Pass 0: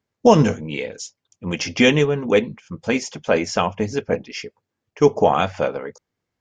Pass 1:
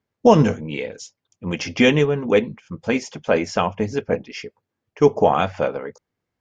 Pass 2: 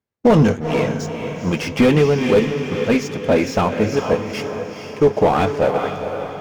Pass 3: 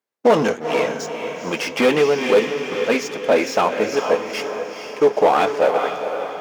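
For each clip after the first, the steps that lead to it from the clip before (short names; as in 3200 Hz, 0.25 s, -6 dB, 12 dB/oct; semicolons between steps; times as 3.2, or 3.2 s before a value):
high shelf 4700 Hz -7.5 dB
sample leveller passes 2; diffused feedback echo 0.465 s, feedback 49%, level -8.5 dB; slew limiter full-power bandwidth 260 Hz; gain -2.5 dB
HPF 400 Hz 12 dB/oct; gain +2 dB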